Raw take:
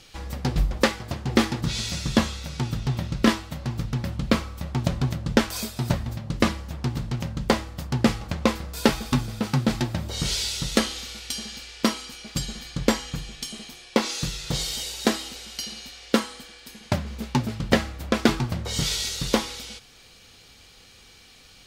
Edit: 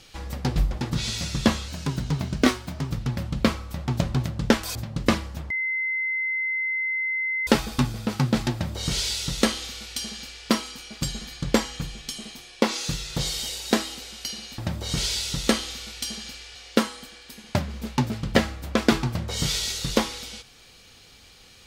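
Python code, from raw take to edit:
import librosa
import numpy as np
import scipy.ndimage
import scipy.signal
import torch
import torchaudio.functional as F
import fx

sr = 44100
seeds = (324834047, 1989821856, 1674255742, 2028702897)

y = fx.edit(x, sr, fx.cut(start_s=0.81, length_s=0.71),
    fx.speed_span(start_s=2.39, length_s=1.38, speed=1.13),
    fx.cut(start_s=5.62, length_s=0.47),
    fx.bleep(start_s=6.84, length_s=1.97, hz=2060.0, db=-23.5),
    fx.duplicate(start_s=9.86, length_s=1.97, to_s=15.92), tone=tone)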